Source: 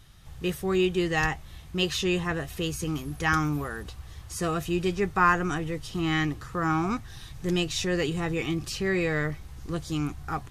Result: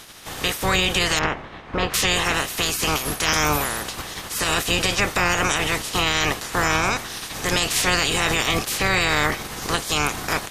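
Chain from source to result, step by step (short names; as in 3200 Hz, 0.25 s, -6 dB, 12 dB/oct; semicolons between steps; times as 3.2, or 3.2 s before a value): spectral limiter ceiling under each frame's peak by 28 dB; 1.19–1.94 LPF 1700 Hz 12 dB/oct; limiter -18.5 dBFS, peak gain reduction 11 dB; gain +9 dB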